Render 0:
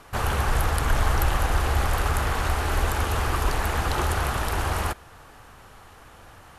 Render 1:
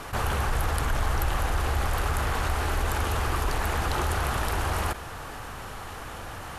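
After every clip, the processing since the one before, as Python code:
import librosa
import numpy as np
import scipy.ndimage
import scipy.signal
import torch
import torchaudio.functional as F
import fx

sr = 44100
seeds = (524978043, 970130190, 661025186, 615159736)

y = fx.env_flatten(x, sr, amount_pct=50)
y = y * librosa.db_to_amplitude(-6.0)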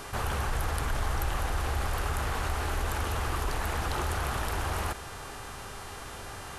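y = fx.dmg_buzz(x, sr, base_hz=400.0, harmonics=29, level_db=-45.0, tilt_db=-2, odd_only=False)
y = y * librosa.db_to_amplitude(-4.0)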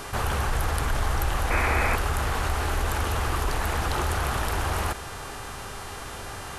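y = fx.spec_paint(x, sr, seeds[0], shape='noise', start_s=1.5, length_s=0.46, low_hz=210.0, high_hz=2600.0, level_db=-31.0)
y = y * librosa.db_to_amplitude(4.5)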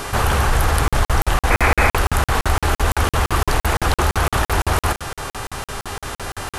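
y = fx.buffer_crackle(x, sr, first_s=0.88, period_s=0.17, block=2048, kind='zero')
y = y * librosa.db_to_amplitude(9.0)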